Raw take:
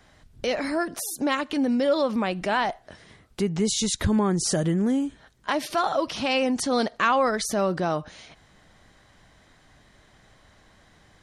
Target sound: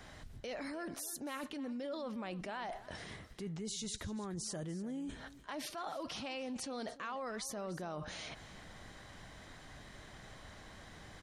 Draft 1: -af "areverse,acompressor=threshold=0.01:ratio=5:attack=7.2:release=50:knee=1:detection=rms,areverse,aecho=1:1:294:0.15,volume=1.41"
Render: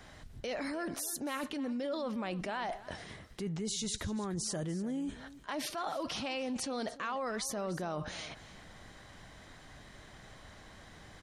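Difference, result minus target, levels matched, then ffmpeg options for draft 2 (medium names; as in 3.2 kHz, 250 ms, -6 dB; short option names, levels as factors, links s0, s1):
compression: peak gain reduction -5 dB
-af "areverse,acompressor=threshold=0.00473:ratio=5:attack=7.2:release=50:knee=1:detection=rms,areverse,aecho=1:1:294:0.15,volume=1.41"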